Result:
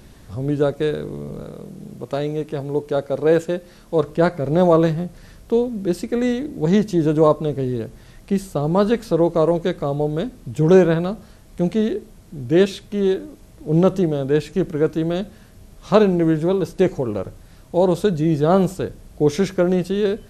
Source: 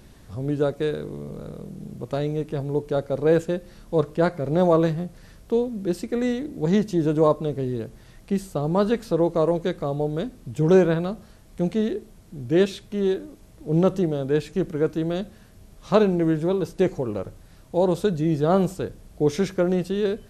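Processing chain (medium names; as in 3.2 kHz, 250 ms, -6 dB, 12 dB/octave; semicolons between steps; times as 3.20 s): 1.44–4.04 s: bass shelf 150 Hz -8.5 dB; trim +4 dB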